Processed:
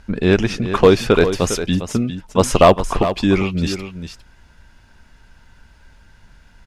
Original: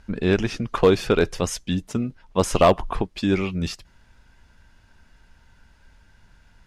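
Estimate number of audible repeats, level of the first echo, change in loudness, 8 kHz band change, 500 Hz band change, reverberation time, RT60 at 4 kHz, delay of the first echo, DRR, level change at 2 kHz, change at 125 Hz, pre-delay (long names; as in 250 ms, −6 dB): 1, −10.5 dB, +5.5 dB, +6.0 dB, +6.0 dB, no reverb audible, no reverb audible, 404 ms, no reverb audible, +6.0 dB, +6.0 dB, no reverb audible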